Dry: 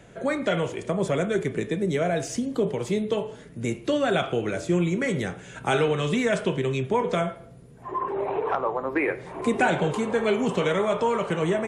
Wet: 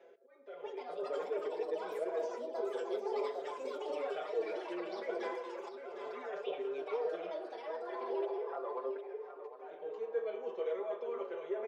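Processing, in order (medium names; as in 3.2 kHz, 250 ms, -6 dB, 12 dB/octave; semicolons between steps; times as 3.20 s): steep low-pass 6.2 kHz 48 dB/octave; treble shelf 3.5 kHz -11 dB; reverse; compression 6:1, threshold -31 dBFS, peak gain reduction 13 dB; reverse; ever faster or slower copies 461 ms, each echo +7 st, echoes 2; slow attack 732 ms; ladder high-pass 420 Hz, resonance 65%; feedback delay 756 ms, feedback 22%, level -10 dB; on a send at -8 dB: reverberation RT60 0.30 s, pre-delay 3 ms; on the sum: endless flanger 5.5 ms +0.36 Hz; trim +2.5 dB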